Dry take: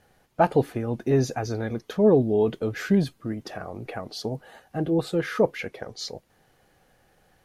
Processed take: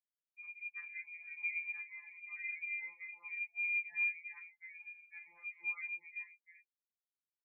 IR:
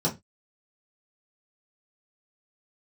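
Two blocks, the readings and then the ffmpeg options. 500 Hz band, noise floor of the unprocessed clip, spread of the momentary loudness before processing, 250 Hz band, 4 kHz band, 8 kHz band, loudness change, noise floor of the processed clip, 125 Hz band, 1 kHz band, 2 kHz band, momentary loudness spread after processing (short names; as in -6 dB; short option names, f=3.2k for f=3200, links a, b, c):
under -40 dB, -64 dBFS, 16 LU, under -40 dB, under -40 dB, under -35 dB, -14.5 dB, under -85 dBFS, under -40 dB, under -30 dB, 0.0 dB, 16 LU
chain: -filter_complex "[0:a]afftfilt=real='re*gte(hypot(re,im),0.0224)':imag='im*gte(hypot(re,im),0.0224)':win_size=1024:overlap=0.75,agate=range=-20dB:threshold=-53dB:ratio=16:detection=peak,highpass=f=53:w=0.5412,highpass=f=53:w=1.3066,adynamicequalizer=threshold=0.0251:dfrequency=250:dqfactor=1.6:tfrequency=250:tqfactor=1.6:attack=5:release=100:ratio=0.375:range=1.5:mode=cutabove:tftype=bell,flanger=delay=19:depth=8:speed=0.54,acrossover=split=140[a][b];[a]asoftclip=type=tanh:threshold=-37.5dB[c];[b]acompressor=threshold=-38dB:ratio=6[d];[c][d]amix=inputs=2:normalize=0,firequalizer=gain_entry='entry(170,0);entry(260,-21);entry(1800,-27)':delay=0.05:min_phase=1,acrossover=split=170|1800[e][f][g];[g]adelay=50[h];[f]adelay=390[i];[e][i][h]amix=inputs=3:normalize=0,lowpass=f=2.1k:t=q:w=0.5098,lowpass=f=2.1k:t=q:w=0.6013,lowpass=f=2.1k:t=q:w=0.9,lowpass=f=2.1k:t=q:w=2.563,afreqshift=-2500,afftfilt=real='re*2.83*eq(mod(b,8),0)':imag='im*2.83*eq(mod(b,8),0)':win_size=2048:overlap=0.75,volume=11dB"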